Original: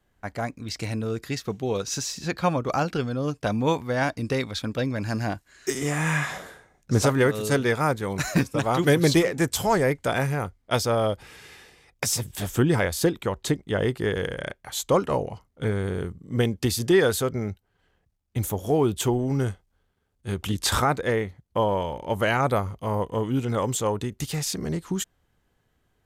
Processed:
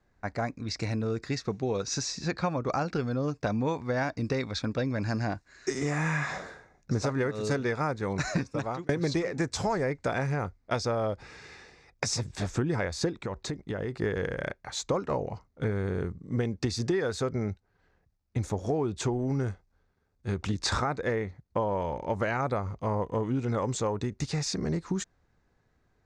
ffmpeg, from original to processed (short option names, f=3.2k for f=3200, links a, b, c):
-filter_complex "[0:a]asettb=1/sr,asplit=3[a][b][c];[a]atrim=end=13.164[d];[b]atrim=start=13.16:end=14.02,asetpts=PTS-STARTPTS,afade=t=in:d=0.004:c=qsin,afade=t=out:st=0.856:d=0.004:c=qsin,acompressor=threshold=-28dB:ratio=10:attack=3.2:release=140:knee=1:detection=peak[e];[c]atrim=start=14.016[f];[d][e]acrossfade=d=0.004:c1=hsin:c2=qsin[g];[g][f]acrossfade=d=0.004:c1=qsin:c2=hsin,asplit=2[h][i];[h]atrim=end=8.89,asetpts=PTS-STARTPTS,afade=t=out:st=8.39:d=0.5[j];[i]atrim=start=8.89,asetpts=PTS-STARTPTS,afade=t=in:d=0.004:c=hsin[k];[j][k]concat=n=2:v=0:a=1,lowpass=f=6.4k:w=0.5412,lowpass=f=6.4k:w=1.3066,equalizer=f=3.1k:w=4.9:g=-13.5,acompressor=threshold=-25dB:ratio=6"